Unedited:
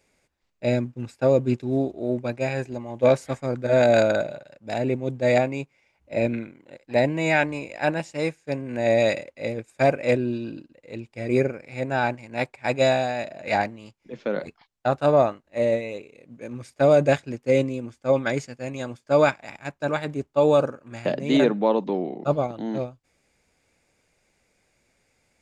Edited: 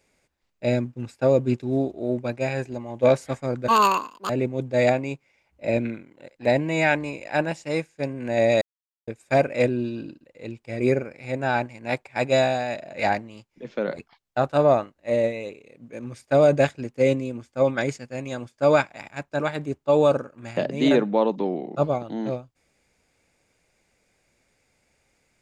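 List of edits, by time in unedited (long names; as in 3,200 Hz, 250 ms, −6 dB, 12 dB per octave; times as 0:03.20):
0:03.68–0:04.78: play speed 179%
0:09.10–0:09.56: silence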